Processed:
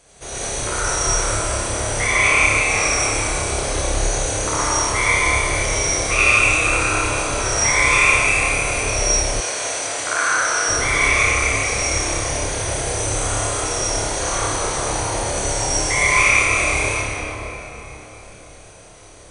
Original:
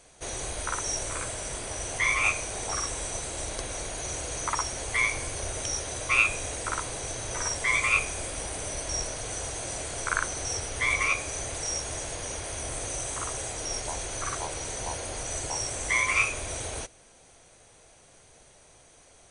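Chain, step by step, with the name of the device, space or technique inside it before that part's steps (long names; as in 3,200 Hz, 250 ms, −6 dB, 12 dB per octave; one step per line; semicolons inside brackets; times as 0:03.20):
tunnel (flutter between parallel walls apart 5 metres, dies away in 0.41 s; convolution reverb RT60 3.9 s, pre-delay 64 ms, DRR −8 dB)
0:09.40–0:10.69: meter weighting curve A
level +1.5 dB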